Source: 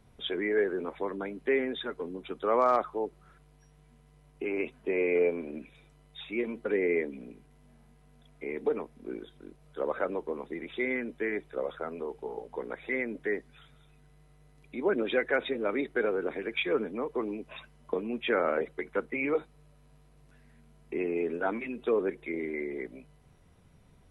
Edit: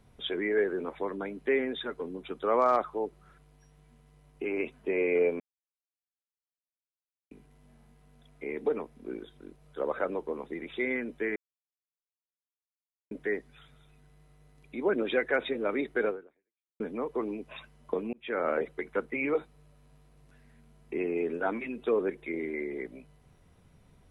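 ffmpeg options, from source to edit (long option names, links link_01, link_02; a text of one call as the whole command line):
ffmpeg -i in.wav -filter_complex "[0:a]asplit=7[link_01][link_02][link_03][link_04][link_05][link_06][link_07];[link_01]atrim=end=5.4,asetpts=PTS-STARTPTS,afade=type=out:start_time=5.396:duration=0.004:curve=hsin[link_08];[link_02]atrim=start=5.4:end=7.31,asetpts=PTS-STARTPTS,volume=0[link_09];[link_03]atrim=start=7.31:end=11.36,asetpts=PTS-STARTPTS,afade=type=in:duration=0.004:curve=hsin,afade=type=out:start_time=4.046:duration=0.004:curve=hsin[link_10];[link_04]atrim=start=11.36:end=13.11,asetpts=PTS-STARTPTS,volume=0[link_11];[link_05]atrim=start=13.11:end=16.8,asetpts=PTS-STARTPTS,afade=type=in:duration=0.004:curve=hsin,afade=type=out:start_time=2.98:duration=0.71:curve=exp[link_12];[link_06]atrim=start=16.8:end=18.13,asetpts=PTS-STARTPTS,afade=type=in:duration=0.004:curve=hsin,afade=type=out:start_time=1.326:duration=0.004:curve=hsin[link_13];[link_07]atrim=start=18.13,asetpts=PTS-STARTPTS,afade=type=in:duration=0.38[link_14];[link_08][link_09][link_10][link_11][link_12][link_13][link_14]concat=n=7:v=0:a=1" out.wav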